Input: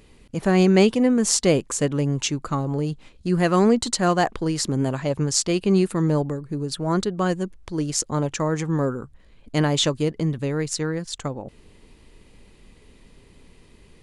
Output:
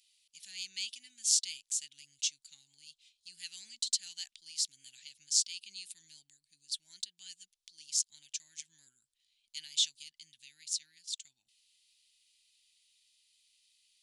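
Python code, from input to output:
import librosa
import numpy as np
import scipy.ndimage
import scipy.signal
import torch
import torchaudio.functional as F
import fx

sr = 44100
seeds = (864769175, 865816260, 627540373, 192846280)

y = scipy.signal.sosfilt(scipy.signal.cheby2(4, 50, 1300.0, 'highpass', fs=sr, output='sos'), x)
y = fx.high_shelf(y, sr, hz=7700.0, db=-5.0)
y = y * 10.0 ** (-3.5 / 20.0)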